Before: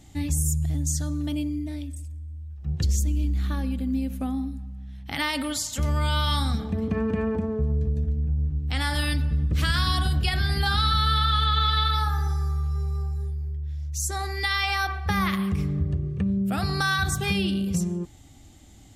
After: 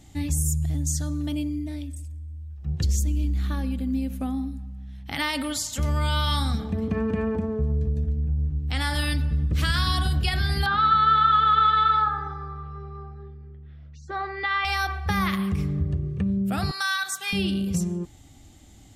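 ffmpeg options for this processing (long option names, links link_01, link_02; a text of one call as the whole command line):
ffmpeg -i in.wav -filter_complex "[0:a]asettb=1/sr,asplit=3[link_01][link_02][link_03];[link_01]atrim=end=10.664[link_04];[link_02]atrim=start=10.66:end=14.65,asetpts=PTS-STARTPTS,afade=type=in:duration=0.004:curve=qsin,afade=type=out:start_time=3.986:duration=0.004:curve=qsin,highpass=160,equalizer=frequency=550:width_type=q:width=4:gain=6,equalizer=frequency=1300:width_type=q:width=4:gain=8,equalizer=frequency=2400:width_type=q:width=4:gain=-3,lowpass=frequency=3000:width=0.5412,lowpass=frequency=3000:width=1.3066[link_05];[link_03]atrim=start=14.646[link_06];[link_04][link_05]acrossfade=duration=0.004:curve1=hsin:curve2=qsin[link_07];[link_07][link_06]acrossfade=duration=0.004:curve1=qsin:curve2=hsin,asettb=1/sr,asplit=3[link_08][link_09][link_10];[link_08]atrim=end=16.714[link_11];[link_09]atrim=start=16.71:end=17.33,asetpts=PTS-STARTPTS,afade=type=in:duration=0.004:curve=qsin,afade=type=out:start_time=0.616:duration=0.004:curve=qsin,highpass=1100[link_12];[link_10]atrim=start=17.326[link_13];[link_11][link_12]acrossfade=duration=0.004:curve1=hsin:curve2=qsin[link_14];[link_14][link_13]acrossfade=duration=0.004:curve1=qsin:curve2=hsin" out.wav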